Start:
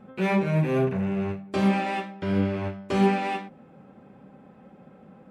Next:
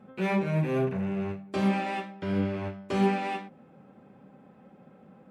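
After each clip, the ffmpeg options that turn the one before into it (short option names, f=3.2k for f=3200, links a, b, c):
-af "highpass=72,volume=-3.5dB"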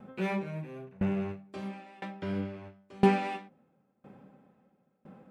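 -af "aeval=exprs='val(0)*pow(10,-27*if(lt(mod(0.99*n/s,1),2*abs(0.99)/1000),1-mod(0.99*n/s,1)/(2*abs(0.99)/1000),(mod(0.99*n/s,1)-2*abs(0.99)/1000)/(1-2*abs(0.99)/1000))/20)':c=same,volume=3.5dB"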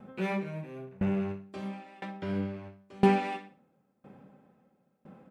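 -af "aecho=1:1:61|122|183:0.188|0.0678|0.0244"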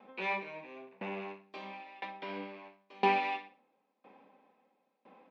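-af "highpass=f=310:w=0.5412,highpass=f=310:w=1.3066,equalizer=f=370:t=q:w=4:g=-8,equalizer=f=580:t=q:w=4:g=-4,equalizer=f=990:t=q:w=4:g=6,equalizer=f=1.4k:t=q:w=4:g=-9,equalizer=f=2.4k:t=q:w=4:g=6,equalizer=f=3.8k:t=q:w=4:g=3,lowpass=f=5k:w=0.5412,lowpass=f=5k:w=1.3066"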